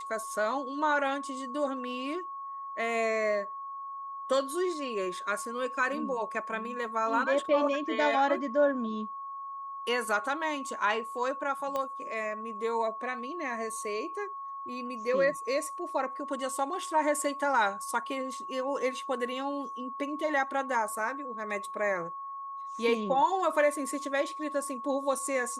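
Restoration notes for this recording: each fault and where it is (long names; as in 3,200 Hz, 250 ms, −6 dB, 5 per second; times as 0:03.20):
whistle 1,100 Hz −37 dBFS
0:11.76: click −19 dBFS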